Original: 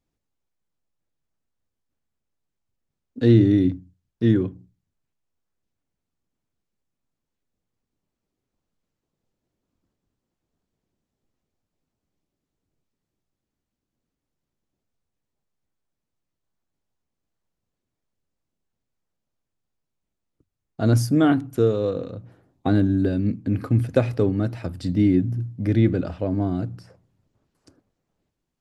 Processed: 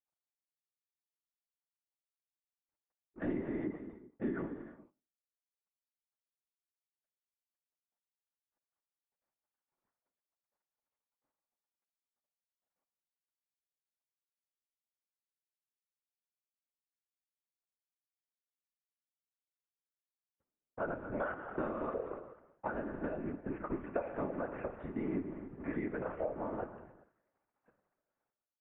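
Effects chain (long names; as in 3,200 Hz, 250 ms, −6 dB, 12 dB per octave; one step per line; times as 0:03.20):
mu-law and A-law mismatch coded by A
parametric band 200 Hz −11 dB 1.6 octaves
comb filter 5 ms, depth 62%
reverb whose tail is shaped and stops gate 450 ms falling, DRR 8 dB
one-pitch LPC vocoder at 8 kHz 290 Hz
spectral tilt +4 dB per octave
random phases in short frames
downward compressor 5 to 1, threshold −35 dBFS, peak gain reduction 13 dB
Gaussian smoothing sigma 6 samples
level +3.5 dB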